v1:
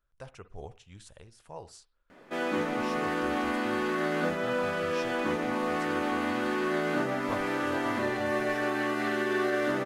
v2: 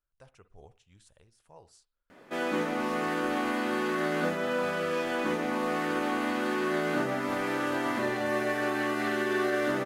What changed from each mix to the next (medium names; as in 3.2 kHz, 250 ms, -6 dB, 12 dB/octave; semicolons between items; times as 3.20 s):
speech -10.0 dB; master: add treble shelf 8.3 kHz +5 dB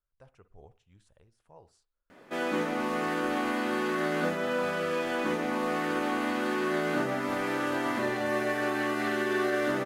speech: add treble shelf 2.5 kHz -10.5 dB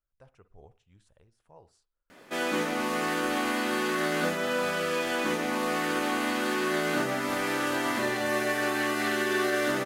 background: add treble shelf 2.7 kHz +10 dB